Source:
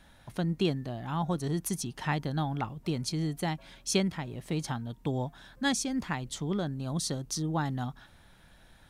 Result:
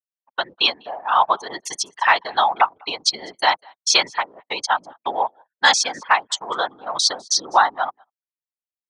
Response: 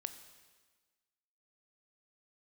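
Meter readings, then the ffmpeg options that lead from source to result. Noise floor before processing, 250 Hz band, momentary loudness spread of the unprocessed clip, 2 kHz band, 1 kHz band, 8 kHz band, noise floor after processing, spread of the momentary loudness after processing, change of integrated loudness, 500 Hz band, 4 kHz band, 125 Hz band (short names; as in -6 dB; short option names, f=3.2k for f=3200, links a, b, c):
-58 dBFS, -10.5 dB, 7 LU, +18.0 dB, +19.0 dB, +12.0 dB, under -85 dBFS, 11 LU, +12.5 dB, +7.0 dB, +18.0 dB, under -20 dB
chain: -filter_complex "[0:a]afftfilt=real='re*gte(hypot(re,im),0.00708)':imag='im*gte(hypot(re,im),0.00708)':win_size=1024:overlap=0.75,anlmdn=1.58,highpass=f=960:t=q:w=1.8,asplit=2[a][b];[b]adelay=198.3,volume=-30dB,highshelf=f=4k:g=-4.46[c];[a][c]amix=inputs=2:normalize=0,agate=range=-16dB:threshold=-57dB:ratio=16:detection=peak,acrossover=split=1300[d][e];[d]dynaudnorm=f=230:g=11:m=3.5dB[f];[f][e]amix=inputs=2:normalize=0,afftfilt=real='hypot(re,im)*cos(2*PI*random(0))':imag='hypot(re,im)*sin(2*PI*random(1))':win_size=512:overlap=0.75,aemphasis=mode=production:type=riaa,acrossover=split=4700[g][h];[h]acompressor=threshold=-40dB:ratio=4:attack=1:release=60[i];[g][i]amix=inputs=2:normalize=0,asoftclip=type=tanh:threshold=-17.5dB,lowpass=f=6.2k:w=0.5412,lowpass=f=6.2k:w=1.3066,alimiter=level_in=23.5dB:limit=-1dB:release=50:level=0:latency=1,volume=-2.5dB"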